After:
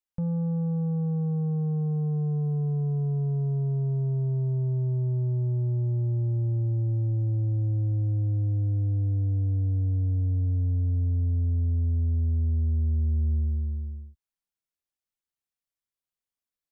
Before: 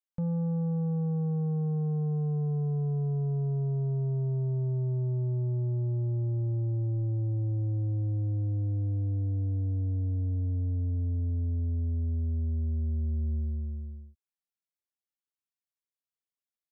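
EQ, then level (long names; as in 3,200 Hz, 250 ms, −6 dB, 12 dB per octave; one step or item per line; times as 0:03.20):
low-shelf EQ 91 Hz +9 dB
0.0 dB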